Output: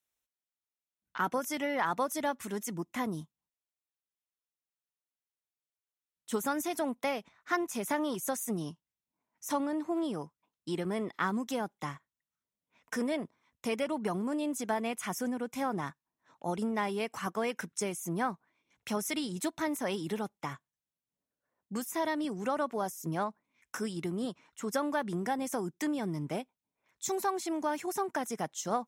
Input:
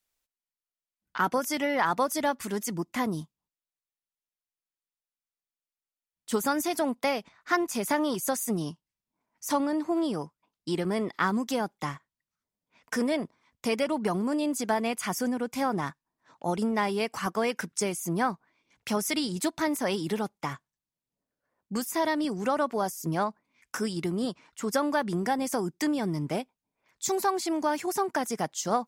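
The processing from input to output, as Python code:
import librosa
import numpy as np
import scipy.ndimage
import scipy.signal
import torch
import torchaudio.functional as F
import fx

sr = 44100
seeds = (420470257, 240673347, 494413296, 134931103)

y = scipy.signal.sosfilt(scipy.signal.butter(2, 43.0, 'highpass', fs=sr, output='sos'), x)
y = fx.notch(y, sr, hz=4700.0, q=6.5)
y = y * librosa.db_to_amplitude(-5.0)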